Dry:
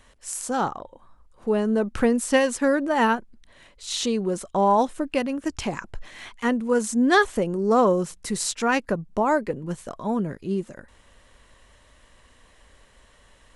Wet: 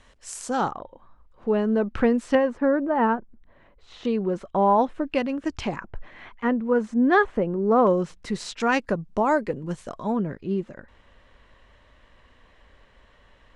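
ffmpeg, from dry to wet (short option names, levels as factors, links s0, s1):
-af "asetnsamples=n=441:p=0,asendcmd='0.71 lowpass f 3300;2.35 lowpass f 1300;4.05 lowpass f 2600;5.07 lowpass f 4400;5.76 lowpass f 1900;7.87 lowpass f 3800;8.6 lowpass f 6800;10.12 lowpass f 3300',lowpass=7000"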